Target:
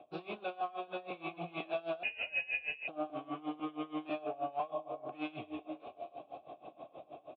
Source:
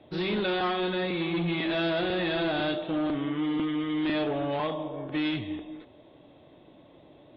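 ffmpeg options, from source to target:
ffmpeg -i in.wav -filter_complex "[0:a]asplit=2[link_01][link_02];[link_02]asplit=4[link_03][link_04][link_05][link_06];[link_03]adelay=273,afreqshift=130,volume=-23dB[link_07];[link_04]adelay=546,afreqshift=260,volume=-28.5dB[link_08];[link_05]adelay=819,afreqshift=390,volume=-34dB[link_09];[link_06]adelay=1092,afreqshift=520,volume=-39.5dB[link_10];[link_07][link_08][link_09][link_10]amix=inputs=4:normalize=0[link_11];[link_01][link_11]amix=inputs=2:normalize=0,dynaudnorm=framelen=430:gausssize=7:maxgain=7dB,asplit=3[link_12][link_13][link_14];[link_12]bandpass=frequency=730:width_type=q:width=8,volume=0dB[link_15];[link_13]bandpass=frequency=1090:width_type=q:width=8,volume=-6dB[link_16];[link_14]bandpass=frequency=2440:width_type=q:width=8,volume=-9dB[link_17];[link_15][link_16][link_17]amix=inputs=3:normalize=0,asettb=1/sr,asplit=3[link_18][link_19][link_20];[link_18]atrim=end=2.034[link_21];[link_19]atrim=start=2.03:end=2.88,asetpts=PTS-STARTPTS,afade=type=in:duration=0.004:curve=qsin,afade=type=out:start_time=0.846:duration=0.004:curve=qsin,lowpass=frequency=2700:width_type=q:width=0.5098,lowpass=frequency=2700:width_type=q:width=0.6013,lowpass=frequency=2700:width_type=q:width=0.9,lowpass=frequency=2700:width_type=q:width=2.563,afreqshift=-3200[link_22];[link_20]atrim=start=2.876[link_23];[link_21][link_22]acrossfade=duration=0.004:curve1=hsin:curve2=qsin[link_24];[link_24][link_23]acrossfade=duration=0.004:curve1=qsin:curve2=hsin,lowshelf=frequency=240:gain=8.5,asplit=2[link_25][link_26];[link_26]adelay=13,volume=-12dB[link_27];[link_25][link_27]amix=inputs=2:normalize=0,acompressor=threshold=-49dB:ratio=2.5,aeval=exprs='val(0)*pow(10,-21*(0.5-0.5*cos(2*PI*6.3*n/s))/20)':channel_layout=same,volume=11.5dB" out.wav

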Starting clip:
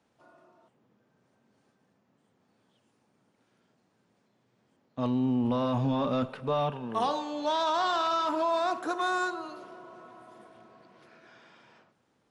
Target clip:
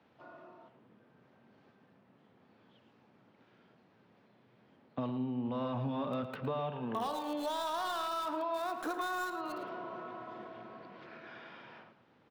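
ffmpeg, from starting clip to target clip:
ffmpeg -i in.wav -filter_complex "[0:a]highpass=63,highshelf=frequency=4400:gain=8.5,asplit=2[link_01][link_02];[link_02]alimiter=level_in=4.5dB:limit=-24dB:level=0:latency=1:release=359,volume=-4.5dB,volume=-2dB[link_03];[link_01][link_03]amix=inputs=2:normalize=0,acompressor=threshold=-35dB:ratio=4,acrossover=split=120|3700[link_04][link_05][link_06];[link_06]acrusher=bits=5:dc=4:mix=0:aa=0.000001[link_07];[link_04][link_05][link_07]amix=inputs=3:normalize=0,asplit=2[link_08][link_09];[link_09]adelay=110.8,volume=-11dB,highshelf=frequency=4000:gain=-2.49[link_10];[link_08][link_10]amix=inputs=2:normalize=0" out.wav

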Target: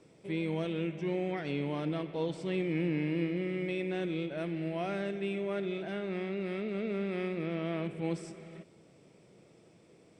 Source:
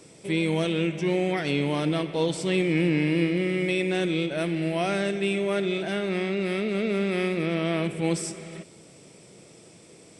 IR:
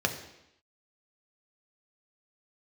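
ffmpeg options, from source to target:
-af "aemphasis=mode=reproduction:type=75fm,volume=-9dB"

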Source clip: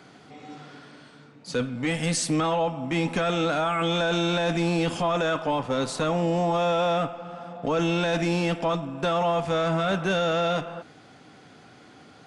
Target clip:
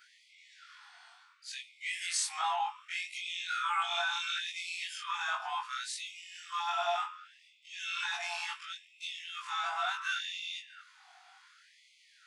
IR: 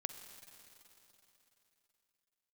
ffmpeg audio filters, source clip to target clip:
-af "afftfilt=real='re':imag='-im':win_size=2048:overlap=0.75,afftfilt=real='re*gte(b*sr/1024,650*pow(2000/650,0.5+0.5*sin(2*PI*0.69*pts/sr)))':imag='im*gte(b*sr/1024,650*pow(2000/650,0.5+0.5*sin(2*PI*0.69*pts/sr)))':win_size=1024:overlap=0.75"

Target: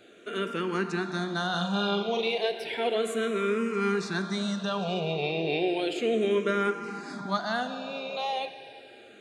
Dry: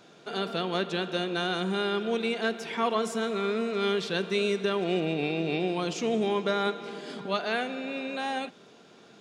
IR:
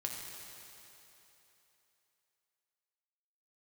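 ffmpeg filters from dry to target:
-filter_complex "[0:a]asettb=1/sr,asplit=3[link_01][link_02][link_03];[link_01]atrim=end=1.504[link_04];[link_02]atrim=start=1.5:end=2.38,asetpts=PTS-STARTPTS,afade=type=in:duration=0.004:curve=qsin,afade=type=out:start_time=0.876:duration=0.004:curve=qsin,asplit=2[link_05][link_06];[link_06]adelay=40,volume=-5dB[link_07];[link_05][link_07]amix=inputs=2:normalize=0,atrim=end_sample=38808[link_08];[link_03]atrim=start=2.376[link_09];[link_04][link_08]acrossfade=duration=0.004:curve1=hsin:curve2=qsin[link_10];[link_10][link_09]acrossfade=duration=0.004:curve1=qsin:curve2=hsin,asplit=2[link_11][link_12];[1:a]atrim=start_sample=2205[link_13];[link_12][link_13]afir=irnorm=-1:irlink=0,volume=-6dB[link_14];[link_11][link_14]amix=inputs=2:normalize=0,asplit=2[link_15][link_16];[link_16]afreqshift=-0.33[link_17];[link_15][link_17]amix=inputs=2:normalize=1"

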